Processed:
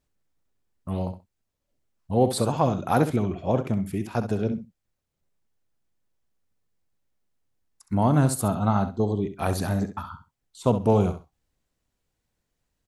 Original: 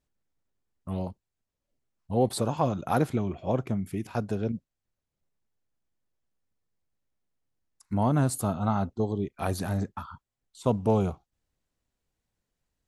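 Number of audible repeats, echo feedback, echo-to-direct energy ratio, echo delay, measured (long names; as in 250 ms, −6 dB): 2, 18%, −10.5 dB, 66 ms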